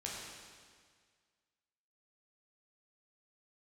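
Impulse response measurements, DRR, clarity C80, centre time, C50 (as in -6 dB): -4.5 dB, 1.0 dB, 104 ms, -0.5 dB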